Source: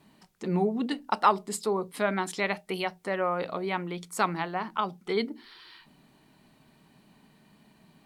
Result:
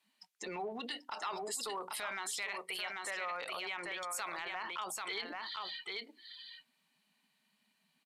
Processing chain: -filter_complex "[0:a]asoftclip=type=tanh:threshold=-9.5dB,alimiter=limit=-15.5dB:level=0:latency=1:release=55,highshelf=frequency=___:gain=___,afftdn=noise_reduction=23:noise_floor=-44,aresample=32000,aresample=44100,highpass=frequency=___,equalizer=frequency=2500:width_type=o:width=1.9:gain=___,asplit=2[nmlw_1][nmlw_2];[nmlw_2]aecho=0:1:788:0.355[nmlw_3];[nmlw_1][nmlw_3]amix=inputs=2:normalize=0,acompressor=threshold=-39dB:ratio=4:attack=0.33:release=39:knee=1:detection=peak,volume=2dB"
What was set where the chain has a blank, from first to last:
3700, 12, 620, 8